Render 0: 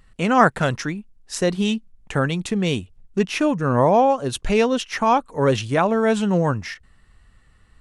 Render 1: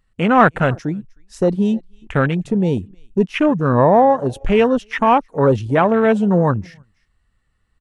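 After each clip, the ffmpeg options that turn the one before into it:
ffmpeg -i in.wav -af "aecho=1:1:310:0.0668,acontrast=52,afwtdn=0.0891,volume=-1dB" out.wav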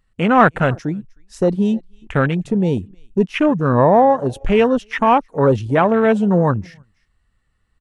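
ffmpeg -i in.wav -af anull out.wav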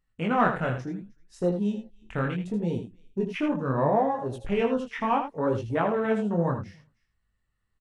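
ffmpeg -i in.wav -af "flanger=delay=17:depth=6.9:speed=0.71,aecho=1:1:79:0.376,volume=-8.5dB" out.wav

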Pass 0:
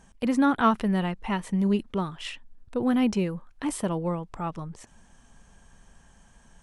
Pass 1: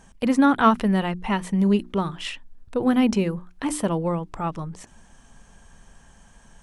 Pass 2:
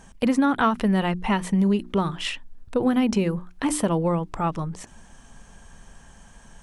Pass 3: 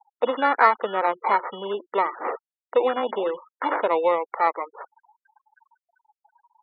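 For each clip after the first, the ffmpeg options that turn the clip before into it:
ffmpeg -i in.wav -af "bandreject=frequency=60:width_type=h:width=6,bandreject=frequency=120:width_type=h:width=6,bandreject=frequency=180:width_type=h:width=6,bandreject=frequency=240:width_type=h:width=6,bandreject=frequency=300:width_type=h:width=6,bandreject=frequency=360:width_type=h:width=6,volume=4.5dB" out.wav
ffmpeg -i in.wav -af "acompressor=threshold=-20dB:ratio=6,volume=3dB" out.wav
ffmpeg -i in.wav -af "acrusher=samples=14:mix=1:aa=0.000001,highpass=frequency=430:width=0.5412,highpass=frequency=430:width=1.3066,equalizer=frequency=500:width_type=q:width=4:gain=4,equalizer=frequency=920:width_type=q:width=4:gain=6,equalizer=frequency=1300:width_type=q:width=4:gain=4,equalizer=frequency=2600:width_type=q:width=4:gain=-9,lowpass=frequency=2900:width=0.5412,lowpass=frequency=2900:width=1.3066,afftfilt=real='re*gte(hypot(re,im),0.0141)':imag='im*gte(hypot(re,im),0.0141)':win_size=1024:overlap=0.75,volume=3dB" out.wav

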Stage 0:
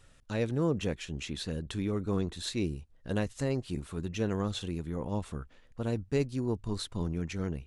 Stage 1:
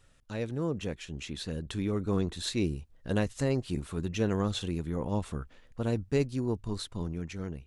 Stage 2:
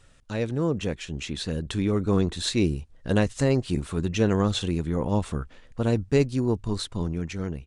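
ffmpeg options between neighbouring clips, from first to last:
ffmpeg -i in.wav -af "dynaudnorm=framelen=460:gausssize=7:maxgain=6dB,volume=-3.5dB" out.wav
ffmpeg -i in.wav -af "aresample=22050,aresample=44100,volume=6.5dB" out.wav

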